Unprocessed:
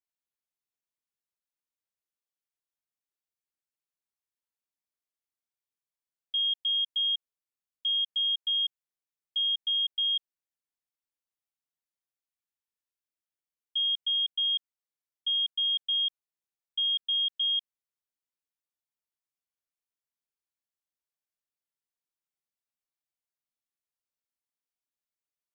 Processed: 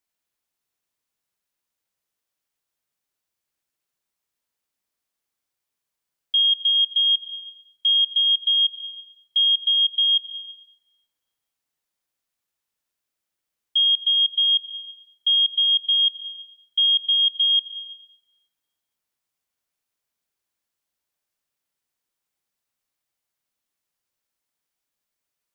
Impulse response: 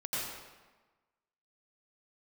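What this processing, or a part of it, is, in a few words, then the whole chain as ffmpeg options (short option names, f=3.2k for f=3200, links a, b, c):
compressed reverb return: -filter_complex "[0:a]asplit=2[a][b];[1:a]atrim=start_sample=2205[c];[b][c]afir=irnorm=-1:irlink=0,acompressor=threshold=-29dB:ratio=6,volume=-9dB[d];[a][d]amix=inputs=2:normalize=0,volume=8dB"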